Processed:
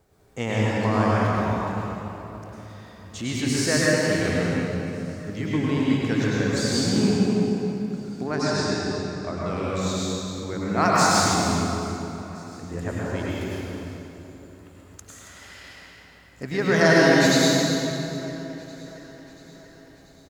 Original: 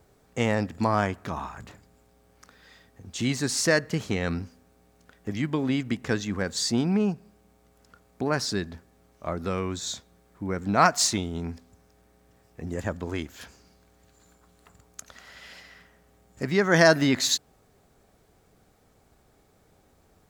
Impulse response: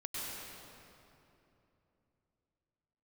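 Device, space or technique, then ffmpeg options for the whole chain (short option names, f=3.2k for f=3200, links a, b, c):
cave: -filter_complex "[0:a]asettb=1/sr,asplit=3[a][b][c];[a]atrim=end=8.254[d];[b]atrim=start=8.25:end=9.5,asetpts=PTS-STARTPTS,afade=t=in:d=0.004:c=qsin,afade=t=out:st=1.246:d=0.004:c=qsin,lowpass=f=8.3k:w=0.5412,lowpass=f=8.3k:w=1.3066[e];[c]atrim=start=9.496[f];[d][e]acrossfade=d=0.004:c1=hsin:c2=qsin[g];[g][f]acrossfade=d=0.004:c1=qsin:c2=hsin,aecho=1:1:275:0.266[h];[1:a]atrim=start_sample=2205[i];[h][i]afir=irnorm=-1:irlink=0,aecho=1:1:685|1370|2055|2740:0.0794|0.0469|0.0277|0.0163,volume=1.5dB"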